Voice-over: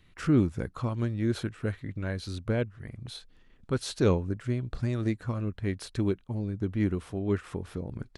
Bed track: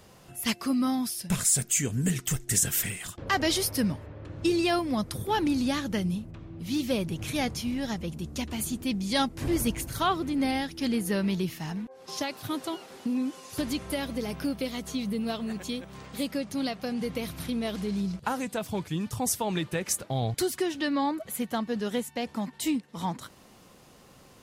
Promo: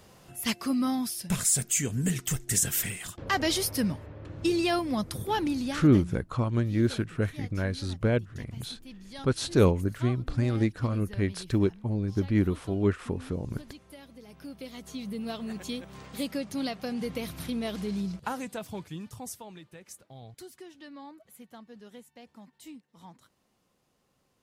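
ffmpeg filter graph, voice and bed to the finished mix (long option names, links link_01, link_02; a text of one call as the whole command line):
ffmpeg -i stem1.wav -i stem2.wav -filter_complex "[0:a]adelay=5550,volume=3dB[link_01];[1:a]volume=15dB,afade=type=out:start_time=5.28:duration=0.95:silence=0.149624,afade=type=in:start_time=14.26:duration=1.48:silence=0.158489,afade=type=out:start_time=17.91:duration=1.66:silence=0.141254[link_02];[link_01][link_02]amix=inputs=2:normalize=0" out.wav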